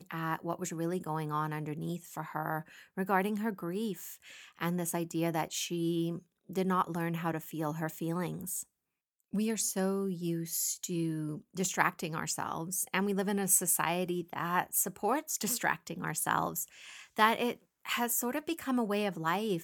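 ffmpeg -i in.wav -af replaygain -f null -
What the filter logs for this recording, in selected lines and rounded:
track_gain = +14.9 dB
track_peak = 0.234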